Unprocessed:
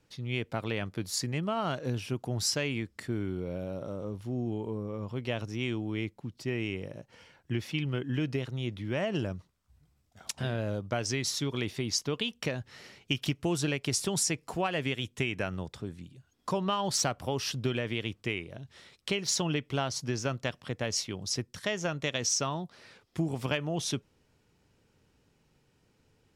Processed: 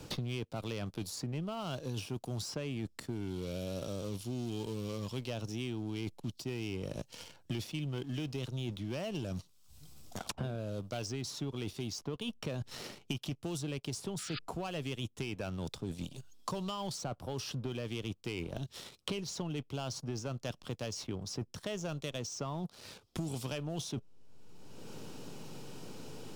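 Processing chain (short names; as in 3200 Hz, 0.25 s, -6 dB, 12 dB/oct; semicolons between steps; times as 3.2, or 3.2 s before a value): sample leveller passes 2; in parallel at -5 dB: backlash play -27.5 dBFS; on the sum: painted sound noise, 14.18–14.39, 1200–5000 Hz -24 dBFS; reverse; compressor 12:1, threshold -31 dBFS, peak gain reduction 16 dB; reverse; bell 1900 Hz -9.5 dB 0.75 oct; three-band squash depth 100%; gain -4 dB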